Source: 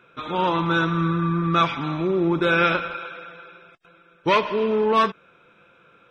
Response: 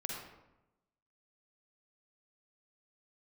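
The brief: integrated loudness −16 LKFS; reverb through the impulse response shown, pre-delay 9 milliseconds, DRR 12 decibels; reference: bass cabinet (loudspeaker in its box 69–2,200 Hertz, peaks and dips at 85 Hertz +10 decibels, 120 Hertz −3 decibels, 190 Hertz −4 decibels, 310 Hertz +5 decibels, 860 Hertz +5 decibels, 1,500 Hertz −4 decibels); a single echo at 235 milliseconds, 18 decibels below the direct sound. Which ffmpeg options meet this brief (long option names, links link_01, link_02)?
-filter_complex "[0:a]aecho=1:1:235:0.126,asplit=2[link_01][link_02];[1:a]atrim=start_sample=2205,adelay=9[link_03];[link_02][link_03]afir=irnorm=-1:irlink=0,volume=-13dB[link_04];[link_01][link_04]amix=inputs=2:normalize=0,highpass=frequency=69:width=0.5412,highpass=frequency=69:width=1.3066,equalizer=frequency=85:width_type=q:width=4:gain=10,equalizer=frequency=120:width_type=q:width=4:gain=-3,equalizer=frequency=190:width_type=q:width=4:gain=-4,equalizer=frequency=310:width_type=q:width=4:gain=5,equalizer=frequency=860:width_type=q:width=4:gain=5,equalizer=frequency=1500:width_type=q:width=4:gain=-4,lowpass=frequency=2200:width=0.5412,lowpass=frequency=2200:width=1.3066,volume=5dB"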